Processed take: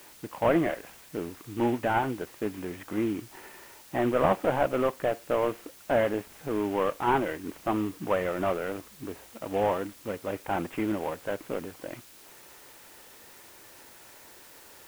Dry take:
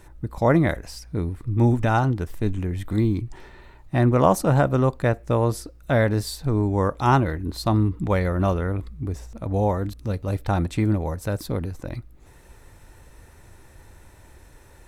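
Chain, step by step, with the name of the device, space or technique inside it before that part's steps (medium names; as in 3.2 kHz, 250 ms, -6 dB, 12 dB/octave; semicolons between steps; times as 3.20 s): army field radio (band-pass 330–3000 Hz; CVSD coder 16 kbps; white noise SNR 22 dB)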